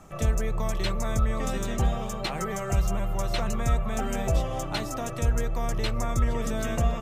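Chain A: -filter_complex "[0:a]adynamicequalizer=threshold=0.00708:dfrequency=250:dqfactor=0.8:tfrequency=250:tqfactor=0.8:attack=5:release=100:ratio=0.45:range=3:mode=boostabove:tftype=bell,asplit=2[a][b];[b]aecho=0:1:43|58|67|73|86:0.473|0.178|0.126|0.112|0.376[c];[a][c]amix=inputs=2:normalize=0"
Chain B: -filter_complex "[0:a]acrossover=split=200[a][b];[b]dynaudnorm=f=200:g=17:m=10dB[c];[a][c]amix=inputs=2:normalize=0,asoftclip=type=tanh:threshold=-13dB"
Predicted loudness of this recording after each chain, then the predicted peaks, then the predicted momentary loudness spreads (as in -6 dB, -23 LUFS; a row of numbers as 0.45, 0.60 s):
-25.5, -25.0 LUFS; -9.0, -13.0 dBFS; 4, 7 LU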